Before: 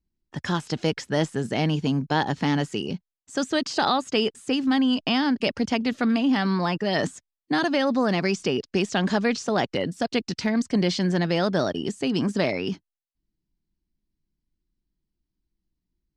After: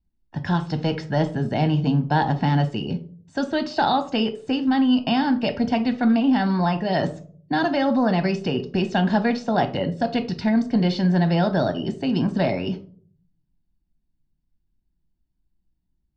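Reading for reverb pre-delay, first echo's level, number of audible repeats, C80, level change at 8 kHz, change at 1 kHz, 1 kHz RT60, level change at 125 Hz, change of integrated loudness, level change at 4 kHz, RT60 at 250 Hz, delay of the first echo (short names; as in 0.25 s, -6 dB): 4 ms, none, none, 18.5 dB, under -10 dB, +4.0 dB, 0.40 s, +5.5 dB, +2.5 dB, -2.0 dB, 0.80 s, none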